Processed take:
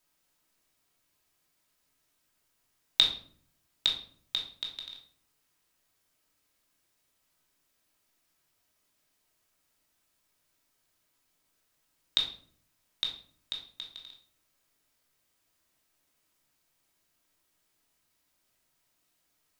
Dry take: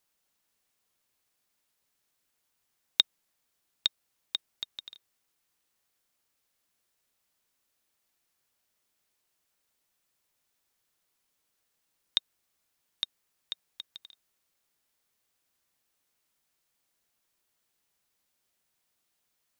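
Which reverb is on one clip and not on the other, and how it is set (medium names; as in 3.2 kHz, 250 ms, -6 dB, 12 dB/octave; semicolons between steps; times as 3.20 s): simulated room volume 660 m³, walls furnished, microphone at 2.8 m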